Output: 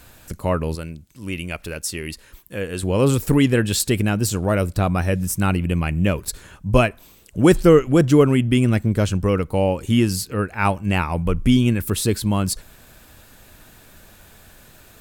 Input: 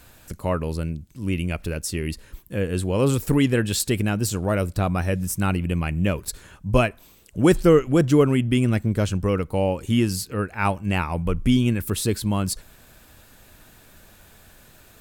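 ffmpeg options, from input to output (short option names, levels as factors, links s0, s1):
-filter_complex "[0:a]asettb=1/sr,asplit=3[s0][s1][s2];[s0]atrim=end=0.754[s3];[s1]atrim=start=0.75:end=2.83,asetpts=PTS-STARTPTS,afade=t=in:d=0.004:c=qsin,afade=t=out:st=2.076:d=0.004:c=qsin,lowshelf=f=400:g=-9.5[s4];[s2]atrim=start=2.826[s5];[s3][s4]acrossfade=d=0.004:c1=hsin:c2=qsin[s6];[s6][s5]acrossfade=d=0.004:c1=qsin:c2=hsin,volume=1.41"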